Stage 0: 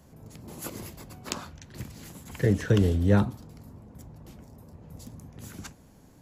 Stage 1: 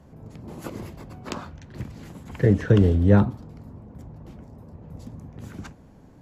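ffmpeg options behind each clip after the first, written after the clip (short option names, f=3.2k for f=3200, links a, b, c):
-af "lowpass=f=1.6k:p=1,volume=5dB"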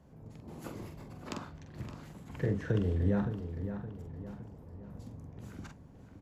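-filter_complex "[0:a]acompressor=threshold=-20dB:ratio=2.5,asplit=2[a][b];[b]adelay=45,volume=-6dB[c];[a][c]amix=inputs=2:normalize=0,asplit=2[d][e];[e]adelay=567,lowpass=f=4k:p=1,volume=-9.5dB,asplit=2[f][g];[g]adelay=567,lowpass=f=4k:p=1,volume=0.45,asplit=2[h][i];[i]adelay=567,lowpass=f=4k:p=1,volume=0.45,asplit=2[j][k];[k]adelay=567,lowpass=f=4k:p=1,volume=0.45,asplit=2[l][m];[m]adelay=567,lowpass=f=4k:p=1,volume=0.45[n];[d][f][h][j][l][n]amix=inputs=6:normalize=0,volume=-9dB"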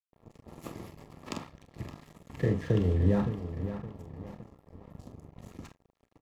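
-filter_complex "[0:a]aeval=exprs='sgn(val(0))*max(abs(val(0))-0.00422,0)':c=same,asuperstop=centerf=1500:order=8:qfactor=7.4,asplit=2[a][b];[b]adelay=33,volume=-14dB[c];[a][c]amix=inputs=2:normalize=0,volume=4.5dB"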